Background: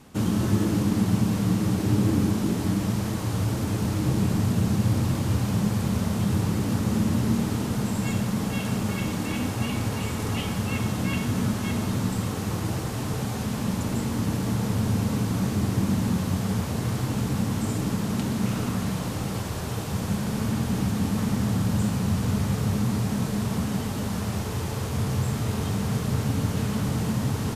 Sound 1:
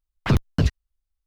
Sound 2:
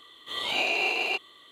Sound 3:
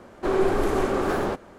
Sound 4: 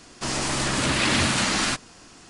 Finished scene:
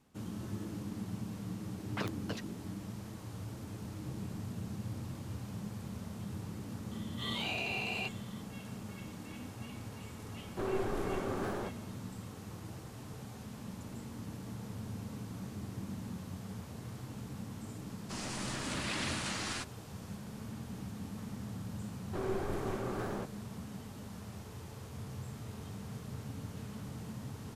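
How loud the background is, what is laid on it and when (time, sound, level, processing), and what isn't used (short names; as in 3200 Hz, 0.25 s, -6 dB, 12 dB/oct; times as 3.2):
background -18 dB
1.71 add 1 -11 dB + HPF 400 Hz
6.91 add 2 -5.5 dB + compressor 3:1, threshold -29 dBFS
10.34 add 3 -13 dB
17.88 add 4 -15 dB
21.9 add 3 -14.5 dB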